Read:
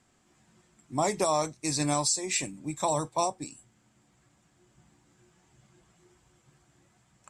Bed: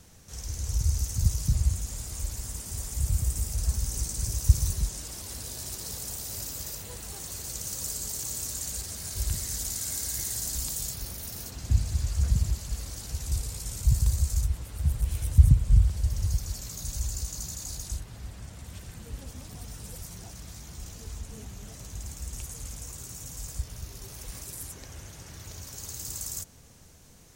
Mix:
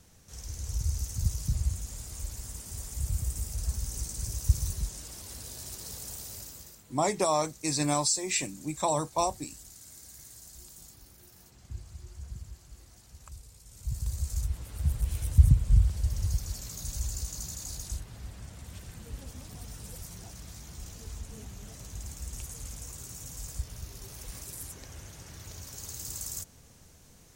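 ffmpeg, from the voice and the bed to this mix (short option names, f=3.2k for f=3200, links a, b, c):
-filter_complex "[0:a]adelay=6000,volume=0dB[a];[1:a]volume=11dB,afade=t=out:st=6.2:d=0.61:silence=0.223872,afade=t=in:st=13.68:d=1.07:silence=0.16788[b];[a][b]amix=inputs=2:normalize=0"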